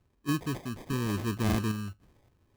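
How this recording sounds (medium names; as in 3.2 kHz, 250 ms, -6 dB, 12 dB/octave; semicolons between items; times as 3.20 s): random-step tremolo; phasing stages 8, 0.86 Hz, lowest notch 640–3400 Hz; aliases and images of a low sample rate 1.4 kHz, jitter 0%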